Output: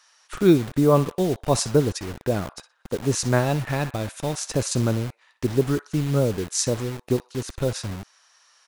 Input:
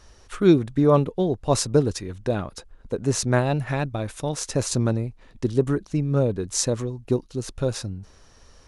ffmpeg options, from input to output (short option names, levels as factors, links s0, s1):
-filter_complex "[0:a]asplit=3[s0][s1][s2];[s0]afade=t=out:st=2.13:d=0.02[s3];[s1]aemphasis=mode=reproduction:type=75fm,afade=t=in:st=2.13:d=0.02,afade=t=out:st=2.56:d=0.02[s4];[s2]afade=t=in:st=2.56:d=0.02[s5];[s3][s4][s5]amix=inputs=3:normalize=0,acrossover=split=860[s6][s7];[s6]acrusher=bits=5:mix=0:aa=0.000001[s8];[s7]asplit=2[s9][s10];[s10]adelay=61,lowpass=f=2600:p=1,volume=0.376,asplit=2[s11][s12];[s12]adelay=61,lowpass=f=2600:p=1,volume=0.4,asplit=2[s13][s14];[s14]adelay=61,lowpass=f=2600:p=1,volume=0.4,asplit=2[s15][s16];[s16]adelay=61,lowpass=f=2600:p=1,volume=0.4[s17];[s9][s11][s13][s15][s17]amix=inputs=5:normalize=0[s18];[s8][s18]amix=inputs=2:normalize=0"